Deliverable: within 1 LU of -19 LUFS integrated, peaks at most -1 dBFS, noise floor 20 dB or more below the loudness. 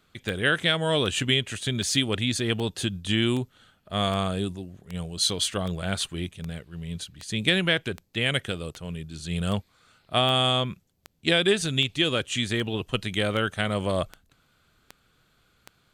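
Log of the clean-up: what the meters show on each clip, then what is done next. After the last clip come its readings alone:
clicks 21; loudness -26.0 LUFS; peak -5.0 dBFS; loudness target -19.0 LUFS
-> de-click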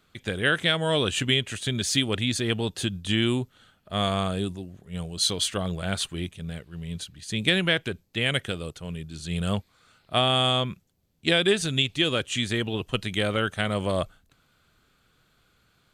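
clicks 0; loudness -26.0 LUFS; peak -5.0 dBFS; loudness target -19.0 LUFS
-> gain +7 dB; limiter -1 dBFS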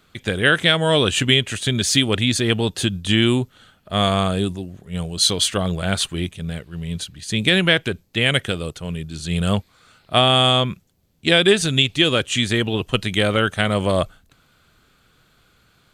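loudness -19.0 LUFS; peak -1.0 dBFS; noise floor -59 dBFS

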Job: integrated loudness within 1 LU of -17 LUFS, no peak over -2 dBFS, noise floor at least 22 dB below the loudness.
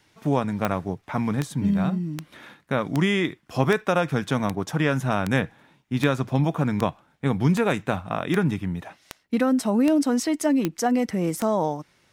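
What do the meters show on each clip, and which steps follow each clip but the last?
clicks 15; loudness -24.5 LUFS; peak -5.0 dBFS; loudness target -17.0 LUFS
-> de-click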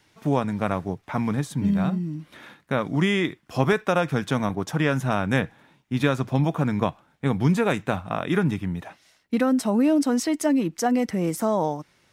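clicks 0; loudness -24.5 LUFS; peak -5.0 dBFS; loudness target -17.0 LUFS
-> gain +7.5 dB; limiter -2 dBFS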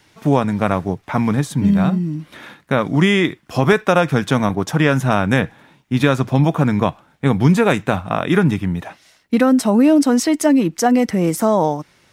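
loudness -17.0 LUFS; peak -2.0 dBFS; noise floor -55 dBFS

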